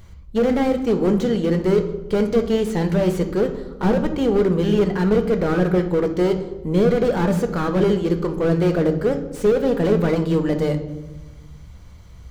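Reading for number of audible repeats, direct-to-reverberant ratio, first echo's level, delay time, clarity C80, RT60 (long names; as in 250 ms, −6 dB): no echo audible, 6.0 dB, no echo audible, no echo audible, 13.0 dB, 1.2 s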